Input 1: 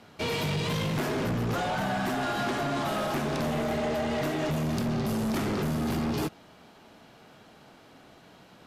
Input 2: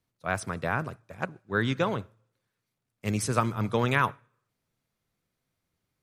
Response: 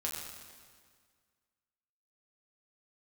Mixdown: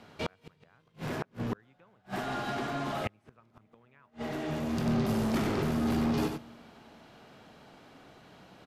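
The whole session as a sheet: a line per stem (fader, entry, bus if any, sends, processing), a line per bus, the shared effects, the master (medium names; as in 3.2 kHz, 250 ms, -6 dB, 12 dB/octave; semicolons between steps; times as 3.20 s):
-2.5 dB, 0.00 s, send -18.5 dB, echo send -5.5 dB, auto duck -15 dB, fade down 1.10 s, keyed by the second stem
-1.0 dB, 0.00 s, no send, no echo send, resonant high shelf 3.8 kHz -13 dB, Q 1.5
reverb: on, RT60 1.8 s, pre-delay 6 ms
echo: delay 94 ms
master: treble shelf 6.8 kHz -6 dB; gain riding 2 s; inverted gate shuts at -21 dBFS, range -37 dB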